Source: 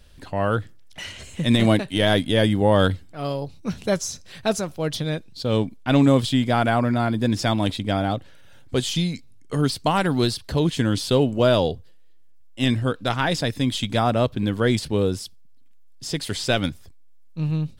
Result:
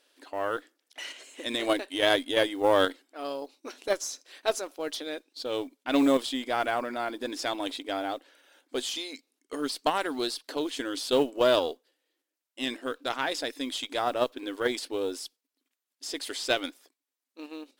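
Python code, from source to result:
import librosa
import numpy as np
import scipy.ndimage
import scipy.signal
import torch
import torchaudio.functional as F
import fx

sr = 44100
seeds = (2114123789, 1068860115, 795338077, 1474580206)

p1 = fx.brickwall_highpass(x, sr, low_hz=250.0)
p2 = fx.mod_noise(p1, sr, seeds[0], snr_db=32)
p3 = fx.cheby_harmonics(p2, sr, harmonics=(4,), levels_db=(-22,), full_scale_db=-6.5)
p4 = fx.low_shelf(p3, sr, hz=350.0, db=-3.0)
p5 = fx.level_steps(p4, sr, step_db=20)
p6 = p4 + F.gain(torch.from_numpy(p5), -1.0).numpy()
y = F.gain(torch.from_numpy(p6), -7.5).numpy()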